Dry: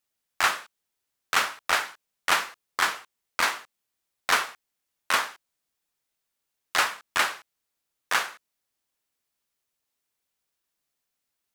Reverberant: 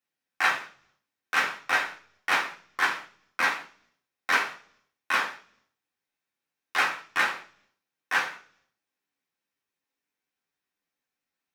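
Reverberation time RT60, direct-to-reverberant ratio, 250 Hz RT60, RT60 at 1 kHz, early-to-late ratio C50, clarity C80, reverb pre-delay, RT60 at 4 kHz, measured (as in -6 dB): 0.45 s, -4.0 dB, 0.75 s, 0.40 s, 11.5 dB, 16.5 dB, 3 ms, 0.60 s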